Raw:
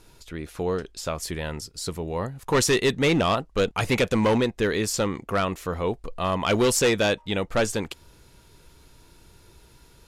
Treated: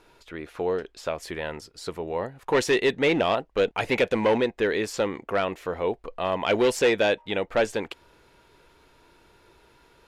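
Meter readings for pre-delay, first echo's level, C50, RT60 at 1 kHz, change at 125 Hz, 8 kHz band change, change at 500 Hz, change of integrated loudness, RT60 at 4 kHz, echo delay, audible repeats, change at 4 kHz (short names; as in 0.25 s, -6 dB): none, none, none, none, -9.0 dB, -10.0 dB, +1.0 dB, -1.0 dB, none, none, none, -3.5 dB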